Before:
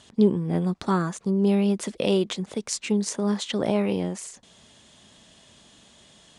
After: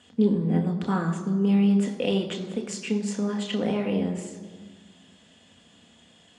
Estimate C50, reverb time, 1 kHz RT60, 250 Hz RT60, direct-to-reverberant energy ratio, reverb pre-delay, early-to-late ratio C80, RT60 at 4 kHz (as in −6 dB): 9.5 dB, 1.5 s, 1.5 s, 2.0 s, 3.0 dB, 3 ms, 10.5 dB, 1.1 s